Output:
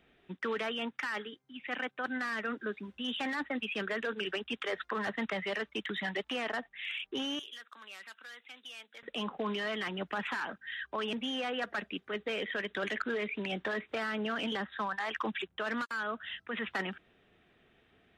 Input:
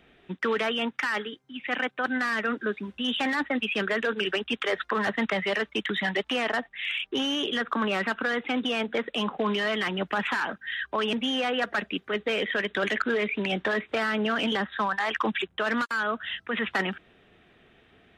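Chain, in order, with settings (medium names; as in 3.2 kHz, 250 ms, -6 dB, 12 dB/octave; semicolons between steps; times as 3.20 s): 7.39–9.03 s: differentiator; trim -8 dB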